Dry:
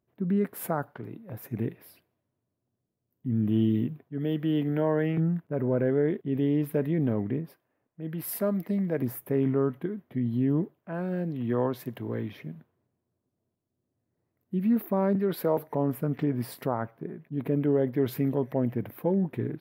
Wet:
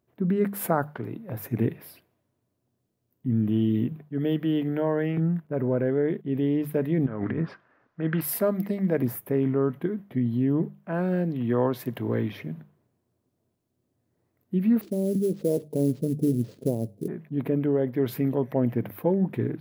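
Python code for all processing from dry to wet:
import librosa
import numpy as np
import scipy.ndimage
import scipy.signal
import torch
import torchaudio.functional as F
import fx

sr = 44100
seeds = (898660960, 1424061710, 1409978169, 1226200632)

y = fx.chain(x, sr, fx.lowpass(hz=5500.0, slope=24),
    fx.peak_eq(hz=1400.0, db=13.0, octaves=0.95),
    fx.over_compress(threshold_db=-31.0, ratio=-0.5), at=(7.06, 8.21))
y = fx.chain(y, sr, fx.cheby2_bandstop(low_hz=2000.0, high_hz=8800.0, order=4, stop_db=70),
    fx.band_shelf(hz=1500.0, db=-8.0, octaves=2.4),
    fx.sample_hold(seeds[0], rate_hz=11000.0, jitter_pct=20), at=(14.81, 17.08))
y = fx.hum_notches(y, sr, base_hz=50, count=4)
y = fx.rider(y, sr, range_db=3, speed_s=0.5)
y = F.gain(torch.from_numpy(y), 3.0).numpy()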